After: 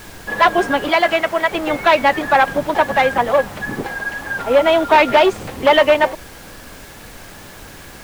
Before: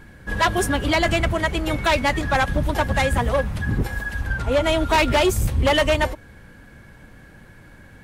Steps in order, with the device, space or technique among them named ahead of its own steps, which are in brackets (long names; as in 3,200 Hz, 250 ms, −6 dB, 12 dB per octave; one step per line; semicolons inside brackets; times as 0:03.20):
horn gramophone (band-pass filter 300–3,200 Hz; parametric band 740 Hz +4 dB; tape wow and flutter; pink noise bed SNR 21 dB)
0:00.89–0:01.51: low-shelf EQ 340 Hz −9 dB
level +5.5 dB